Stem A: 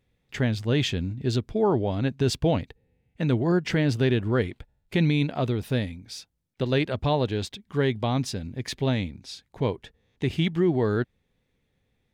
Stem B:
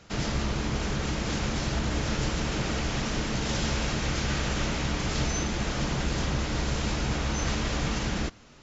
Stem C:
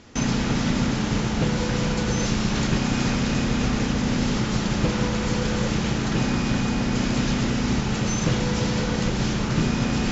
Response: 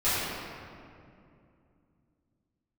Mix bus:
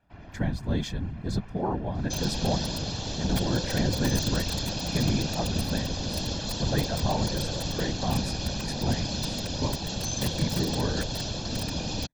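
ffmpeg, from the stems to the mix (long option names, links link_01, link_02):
-filter_complex "[0:a]equalizer=frequency=2800:width_type=o:width=0.54:gain=-13.5,volume=1dB[link_01];[1:a]lowpass=2000,aecho=1:1:2.9:0.66,volume=-12dB[link_02];[2:a]equalizer=frequency=125:width_type=o:width=1:gain=-4,equalizer=frequency=250:width_type=o:width=1:gain=-6,equalizer=frequency=500:width_type=o:width=1:gain=7,equalizer=frequency=1000:width_type=o:width=1:gain=-5,equalizer=frequency=2000:width_type=o:width=1:gain=-12,equalizer=frequency=4000:width_type=o:width=1:gain=11,aeval=exprs='(mod(5.01*val(0)+1,2)-1)/5.01':channel_layout=same,adelay=1950,volume=-1dB[link_03];[link_01][link_02][link_03]amix=inputs=3:normalize=0,afftfilt=real='hypot(re,im)*cos(2*PI*random(0))':imag='hypot(re,im)*sin(2*PI*random(1))':win_size=512:overlap=0.75,aecho=1:1:1.2:0.48"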